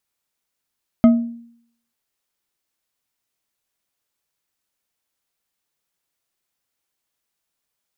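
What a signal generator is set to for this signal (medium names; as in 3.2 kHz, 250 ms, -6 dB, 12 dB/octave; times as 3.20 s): glass hit bar, lowest mode 234 Hz, decay 0.65 s, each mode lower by 9.5 dB, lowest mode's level -5 dB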